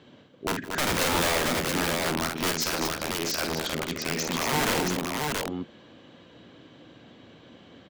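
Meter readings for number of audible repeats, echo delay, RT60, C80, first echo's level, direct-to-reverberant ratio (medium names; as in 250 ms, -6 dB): 4, 50 ms, no reverb, no reverb, -6.0 dB, no reverb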